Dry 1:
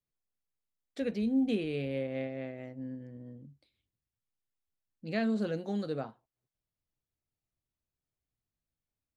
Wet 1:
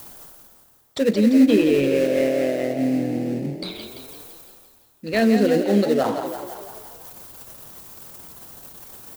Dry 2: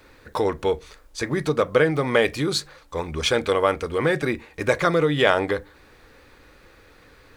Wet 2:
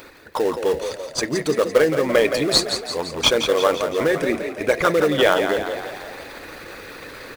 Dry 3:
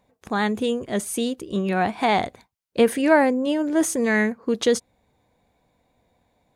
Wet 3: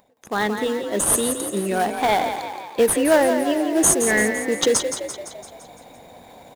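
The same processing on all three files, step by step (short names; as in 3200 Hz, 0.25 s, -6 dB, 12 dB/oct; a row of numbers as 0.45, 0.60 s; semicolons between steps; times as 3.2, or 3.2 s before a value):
formant sharpening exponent 1.5; RIAA curve recording; reverse; upward compressor, threshold -26 dBFS; reverse; dynamic EQ 210 Hz, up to +5 dB, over -38 dBFS, Q 0.86; in parallel at -9 dB: sample-rate reducer 2300 Hz, jitter 20%; on the sum: frequency-shifting echo 0.17 s, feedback 57%, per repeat +38 Hz, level -8 dB; match loudness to -20 LUFS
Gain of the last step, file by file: +10.0, +0.5, -1.0 dB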